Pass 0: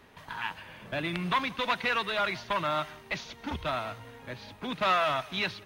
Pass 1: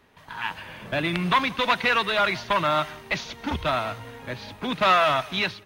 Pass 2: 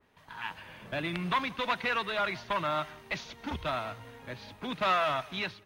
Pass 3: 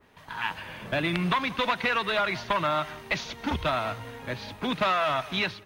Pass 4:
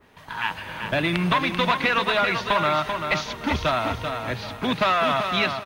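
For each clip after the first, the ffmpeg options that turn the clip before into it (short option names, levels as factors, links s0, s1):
-af "dynaudnorm=f=160:g=5:m=3.16,volume=0.708"
-af "adynamicequalizer=threshold=0.0178:dfrequency=2600:dqfactor=0.7:tfrequency=2600:tqfactor=0.7:attack=5:release=100:ratio=0.375:range=1.5:mode=cutabove:tftype=highshelf,volume=0.398"
-af "acompressor=threshold=0.0316:ratio=5,volume=2.51"
-af "aecho=1:1:388|776|1164:0.473|0.128|0.0345,volume=1.58"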